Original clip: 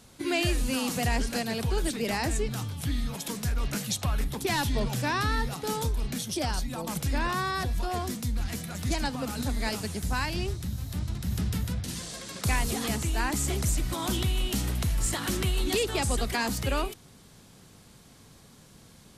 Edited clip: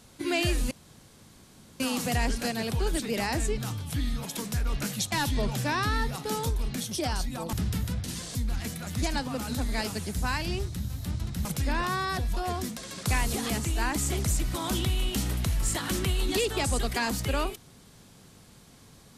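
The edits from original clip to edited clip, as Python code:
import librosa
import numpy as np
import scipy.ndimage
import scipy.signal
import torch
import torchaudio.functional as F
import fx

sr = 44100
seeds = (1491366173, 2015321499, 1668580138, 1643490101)

y = fx.edit(x, sr, fx.insert_room_tone(at_s=0.71, length_s=1.09),
    fx.cut(start_s=4.03, length_s=0.47),
    fx.swap(start_s=6.91, length_s=1.32, other_s=11.33, other_length_s=0.82), tone=tone)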